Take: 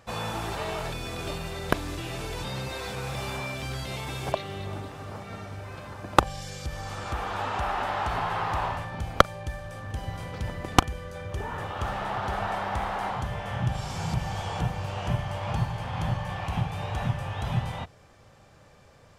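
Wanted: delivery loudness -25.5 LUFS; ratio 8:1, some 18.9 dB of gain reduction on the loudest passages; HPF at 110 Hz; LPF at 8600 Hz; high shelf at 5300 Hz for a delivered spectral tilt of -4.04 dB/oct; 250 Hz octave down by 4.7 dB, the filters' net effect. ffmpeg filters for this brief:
-af "highpass=110,lowpass=8.6k,equalizer=f=250:t=o:g=-7,highshelf=f=5.3k:g=5,acompressor=threshold=-33dB:ratio=8,volume=12dB"

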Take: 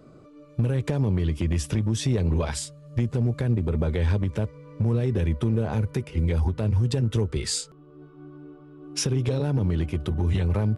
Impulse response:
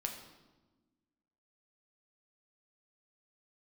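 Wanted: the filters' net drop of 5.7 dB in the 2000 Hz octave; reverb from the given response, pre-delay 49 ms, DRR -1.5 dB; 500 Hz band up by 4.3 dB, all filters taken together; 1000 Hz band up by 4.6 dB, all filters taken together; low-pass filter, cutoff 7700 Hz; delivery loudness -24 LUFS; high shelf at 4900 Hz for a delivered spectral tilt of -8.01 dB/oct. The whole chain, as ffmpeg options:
-filter_complex "[0:a]lowpass=7.7k,equalizer=f=500:t=o:g=4.5,equalizer=f=1k:t=o:g=6.5,equalizer=f=2k:t=o:g=-9,highshelf=f=4.9k:g=-8,asplit=2[a][b];[1:a]atrim=start_sample=2205,adelay=49[c];[b][c]afir=irnorm=-1:irlink=0,volume=1dB[d];[a][d]amix=inputs=2:normalize=0,volume=-3dB"

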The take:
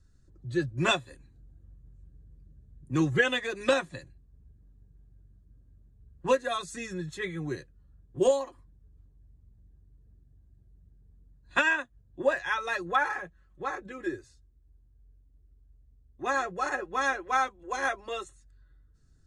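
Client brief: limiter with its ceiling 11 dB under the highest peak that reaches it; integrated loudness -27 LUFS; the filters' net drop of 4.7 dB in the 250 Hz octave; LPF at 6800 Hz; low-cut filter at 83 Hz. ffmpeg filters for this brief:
-af "highpass=83,lowpass=6.8k,equalizer=f=250:t=o:g=-7.5,volume=7.5dB,alimiter=limit=-15dB:level=0:latency=1"

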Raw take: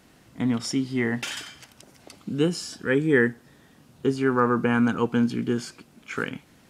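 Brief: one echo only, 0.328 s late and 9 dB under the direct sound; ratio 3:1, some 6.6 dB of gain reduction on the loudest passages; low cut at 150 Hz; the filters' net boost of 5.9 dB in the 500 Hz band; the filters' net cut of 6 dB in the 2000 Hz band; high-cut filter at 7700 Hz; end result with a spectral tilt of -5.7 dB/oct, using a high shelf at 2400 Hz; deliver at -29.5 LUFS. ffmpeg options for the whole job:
-af "highpass=150,lowpass=7.7k,equalizer=f=500:t=o:g=7.5,equalizer=f=2k:t=o:g=-6.5,highshelf=f=2.4k:g=-4,acompressor=threshold=-21dB:ratio=3,aecho=1:1:328:0.355,volume=-2.5dB"

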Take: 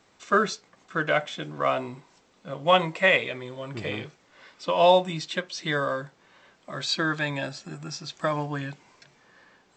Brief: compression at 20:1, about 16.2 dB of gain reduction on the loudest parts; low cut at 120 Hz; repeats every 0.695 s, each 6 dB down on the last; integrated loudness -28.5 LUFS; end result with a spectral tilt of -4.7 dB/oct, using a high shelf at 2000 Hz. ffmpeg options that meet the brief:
-af "highpass=120,highshelf=f=2k:g=-5.5,acompressor=threshold=-30dB:ratio=20,aecho=1:1:695|1390|2085|2780|3475|4170:0.501|0.251|0.125|0.0626|0.0313|0.0157,volume=8dB"

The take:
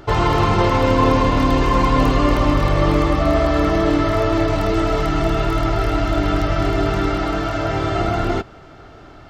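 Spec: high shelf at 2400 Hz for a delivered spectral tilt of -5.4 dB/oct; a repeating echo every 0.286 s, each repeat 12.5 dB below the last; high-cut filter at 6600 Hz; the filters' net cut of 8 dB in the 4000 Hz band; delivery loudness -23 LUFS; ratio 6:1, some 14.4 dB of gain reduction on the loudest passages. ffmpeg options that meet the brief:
-af "lowpass=6.6k,highshelf=f=2.4k:g=-6.5,equalizer=f=4k:t=o:g=-4.5,acompressor=threshold=-28dB:ratio=6,aecho=1:1:286|572|858:0.237|0.0569|0.0137,volume=8dB"

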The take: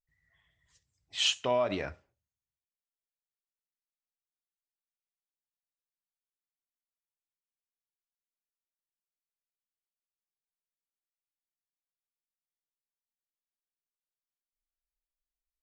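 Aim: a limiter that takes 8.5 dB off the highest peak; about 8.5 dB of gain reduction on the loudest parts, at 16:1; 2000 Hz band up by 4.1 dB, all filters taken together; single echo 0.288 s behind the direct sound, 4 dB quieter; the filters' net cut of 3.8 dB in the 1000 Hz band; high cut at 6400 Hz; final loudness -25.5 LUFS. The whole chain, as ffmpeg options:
-af "lowpass=6.4k,equalizer=f=1k:t=o:g=-6,equalizer=f=2k:t=o:g=7,acompressor=threshold=-29dB:ratio=16,alimiter=level_in=3dB:limit=-24dB:level=0:latency=1,volume=-3dB,aecho=1:1:288:0.631,volume=12dB"

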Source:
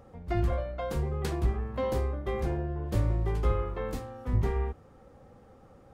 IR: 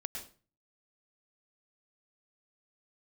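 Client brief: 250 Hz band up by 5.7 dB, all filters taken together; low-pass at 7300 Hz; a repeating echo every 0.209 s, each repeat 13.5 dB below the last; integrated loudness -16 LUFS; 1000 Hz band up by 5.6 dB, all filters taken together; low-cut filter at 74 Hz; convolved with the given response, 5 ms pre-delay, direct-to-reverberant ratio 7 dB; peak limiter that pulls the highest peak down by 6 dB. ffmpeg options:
-filter_complex "[0:a]highpass=74,lowpass=7.3k,equalizer=f=250:t=o:g=8,equalizer=f=1k:t=o:g=7,alimiter=limit=-20.5dB:level=0:latency=1,aecho=1:1:209|418:0.211|0.0444,asplit=2[a][b];[1:a]atrim=start_sample=2205,adelay=5[c];[b][c]afir=irnorm=-1:irlink=0,volume=-6.5dB[d];[a][d]amix=inputs=2:normalize=0,volume=14.5dB"

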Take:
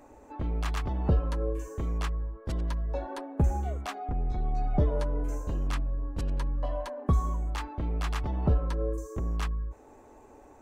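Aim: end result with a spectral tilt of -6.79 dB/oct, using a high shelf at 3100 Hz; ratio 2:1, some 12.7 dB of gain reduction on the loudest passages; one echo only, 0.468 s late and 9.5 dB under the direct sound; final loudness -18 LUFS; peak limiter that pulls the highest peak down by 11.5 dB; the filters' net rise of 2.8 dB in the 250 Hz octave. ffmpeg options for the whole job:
-af "equalizer=f=250:t=o:g=4,highshelf=f=3.1k:g=-8.5,acompressor=threshold=-43dB:ratio=2,alimiter=level_in=12dB:limit=-24dB:level=0:latency=1,volume=-12dB,aecho=1:1:468:0.335,volume=26.5dB"

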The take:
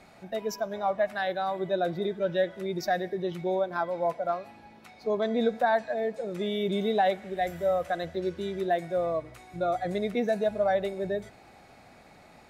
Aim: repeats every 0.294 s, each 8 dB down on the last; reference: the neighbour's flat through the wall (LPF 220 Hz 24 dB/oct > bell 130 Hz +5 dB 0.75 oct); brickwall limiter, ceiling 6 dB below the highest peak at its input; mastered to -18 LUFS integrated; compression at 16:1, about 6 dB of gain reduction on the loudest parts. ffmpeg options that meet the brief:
-af "acompressor=threshold=-26dB:ratio=16,alimiter=level_in=1dB:limit=-24dB:level=0:latency=1,volume=-1dB,lowpass=f=220:w=0.5412,lowpass=f=220:w=1.3066,equalizer=f=130:t=o:w=0.75:g=5,aecho=1:1:294|588|882|1176|1470:0.398|0.159|0.0637|0.0255|0.0102,volume=24.5dB"

